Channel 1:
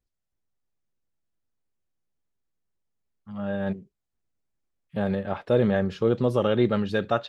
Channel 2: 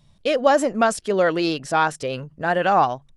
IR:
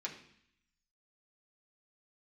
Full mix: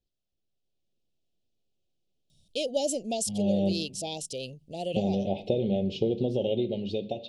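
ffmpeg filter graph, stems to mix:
-filter_complex "[0:a]acompressor=threshold=-28dB:ratio=12,lowpass=2.8k,equalizer=f=1.2k:t=o:w=1.6:g=3.5,volume=-2dB,asplit=3[a][b][c];[b]volume=-4dB[d];[1:a]adelay=2300,volume=-15.5dB[e];[c]apad=whole_len=241085[f];[e][f]sidechaincompress=threshold=-34dB:ratio=8:attack=9.5:release=256[g];[2:a]atrim=start_sample=2205[h];[d][h]afir=irnorm=-1:irlink=0[i];[a][g][i]amix=inputs=3:normalize=0,highshelf=f=2.3k:g=12,dynaudnorm=f=170:g=9:m=5dB,asuperstop=centerf=1400:order=8:qfactor=0.64"

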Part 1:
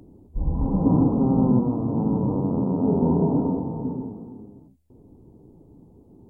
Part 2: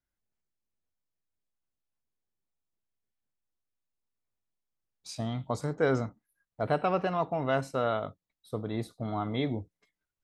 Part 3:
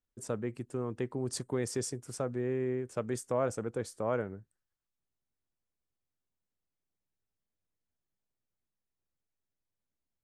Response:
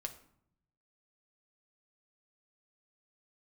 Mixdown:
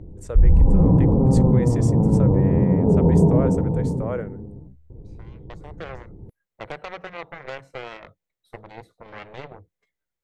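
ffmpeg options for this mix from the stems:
-filter_complex "[0:a]aemphasis=mode=reproduction:type=riaa,alimiter=limit=-6.5dB:level=0:latency=1:release=16,volume=-0.5dB[a];[1:a]acrossover=split=130|2400[b][c][d];[b]acompressor=threshold=-41dB:ratio=4[e];[c]acompressor=threshold=-28dB:ratio=4[f];[d]acompressor=threshold=-57dB:ratio=4[g];[e][f][g]amix=inputs=3:normalize=0,aeval=exprs='0.133*(cos(1*acos(clip(val(0)/0.133,-1,1)))-cos(1*PI/2))+0.0376*(cos(7*acos(clip(val(0)/0.133,-1,1)))-cos(7*PI/2))':c=same,volume=-4.5dB[h];[2:a]volume=0.5dB,asplit=2[i][j];[j]apad=whole_len=451296[k];[h][k]sidechaincompress=threshold=-45dB:ratio=10:attack=6:release=1320[l];[a][l][i]amix=inputs=3:normalize=0,equalizer=f=250:t=o:w=0.33:g=-10,equalizer=f=500:t=o:w=0.33:g=6,equalizer=f=2k:t=o:w=0.33:g=5,equalizer=f=5k:t=o:w=0.33:g=-4,equalizer=f=10k:t=o:w=0.33:g=-5"

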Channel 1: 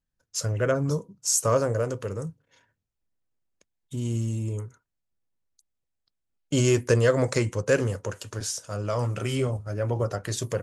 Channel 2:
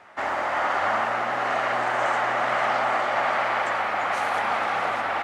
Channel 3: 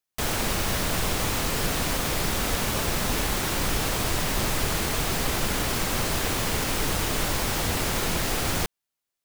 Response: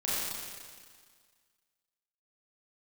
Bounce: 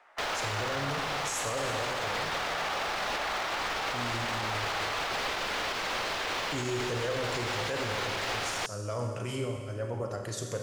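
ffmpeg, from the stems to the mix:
-filter_complex "[0:a]volume=-9dB,asplit=2[a][b];[b]volume=-8.5dB[c];[1:a]highpass=430,volume=-9.5dB[d];[2:a]acrossover=split=450 5200:gain=0.158 1 0.0794[e][f][g];[e][f][g]amix=inputs=3:normalize=0,alimiter=limit=-22.5dB:level=0:latency=1:release=258,volume=2.5dB[h];[3:a]atrim=start_sample=2205[i];[c][i]afir=irnorm=-1:irlink=0[j];[a][d][h][j]amix=inputs=4:normalize=0,lowshelf=f=130:g=-4,alimiter=limit=-23.5dB:level=0:latency=1:release=20"

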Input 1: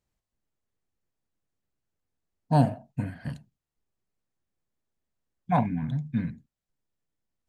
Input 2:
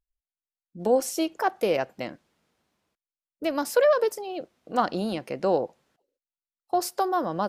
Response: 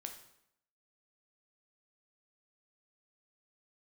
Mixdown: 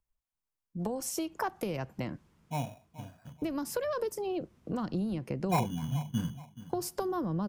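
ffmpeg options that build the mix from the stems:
-filter_complex "[0:a]lowpass=1.4k,acrusher=samples=14:mix=1:aa=0.000001,volume=-2dB,afade=t=in:st=5.32:d=0.62:silence=0.266073,asplit=2[a][b];[b]volume=-16dB[c];[1:a]acrossover=split=250|3000[d][e][f];[e]acompressor=threshold=-30dB:ratio=2.5[g];[d][g][f]amix=inputs=3:normalize=0,asubboost=boost=9.5:cutoff=250,acompressor=threshold=-30dB:ratio=4,volume=-0.5dB[h];[c]aecho=0:1:428|856|1284|1712|2140:1|0.34|0.116|0.0393|0.0134[i];[a][h][i]amix=inputs=3:normalize=0,equalizer=f=250:t=o:w=0.67:g=-4,equalizer=f=1k:t=o:w=0.67:g=7,equalizer=f=4k:t=o:w=0.67:g=-4"

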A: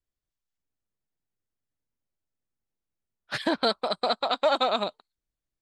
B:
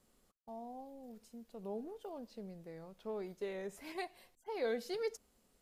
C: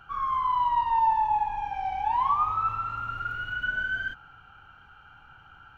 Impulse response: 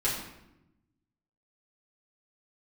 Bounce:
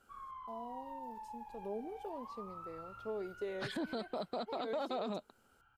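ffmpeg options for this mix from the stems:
-filter_complex "[0:a]lowshelf=f=240:g=10,adelay=300,volume=-5.5dB[a];[1:a]highpass=f=440:p=1,volume=-2dB,asplit=2[b][c];[2:a]acompressor=threshold=-27dB:ratio=6,volume=-18.5dB[d];[c]apad=whole_len=254611[e];[d][e]sidechaincompress=threshold=-46dB:ratio=8:attack=16:release=634[f];[a][b]amix=inputs=2:normalize=0,equalizer=f=290:w=0.49:g=8.5,acompressor=threshold=-34dB:ratio=2,volume=0dB[g];[f][g]amix=inputs=2:normalize=0,alimiter=level_in=5.5dB:limit=-24dB:level=0:latency=1:release=54,volume=-5.5dB"

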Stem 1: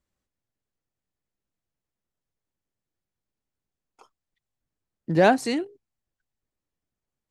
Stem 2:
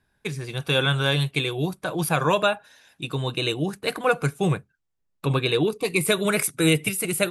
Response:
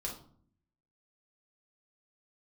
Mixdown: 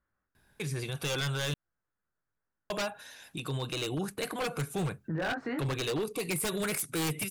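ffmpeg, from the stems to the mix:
-filter_complex "[0:a]alimiter=limit=-11.5dB:level=0:latency=1:release=16,flanger=delay=17.5:depth=7.5:speed=1.2,lowpass=f=1.5k:t=q:w=4,volume=1dB[a];[1:a]highshelf=f=10k:g=7.5,adelay=350,volume=3dB,asplit=3[b][c][d];[b]atrim=end=1.54,asetpts=PTS-STARTPTS,afade=t=out:st=1.536:d=0.004:c=hsin[e];[c]atrim=start=1.54:end=2.7,asetpts=PTS-STARTPTS,volume=0[f];[d]atrim=start=2.7,asetpts=PTS-STARTPTS,afade=t=in:d=0.004:c=hsin[g];[e][f][g]concat=n=3:v=0:a=1[h];[a][h]amix=inputs=2:normalize=0,aeval=exprs='0.188*(abs(mod(val(0)/0.188+3,4)-2)-1)':c=same,alimiter=level_in=2dB:limit=-24dB:level=0:latency=1:release=120,volume=-2dB"

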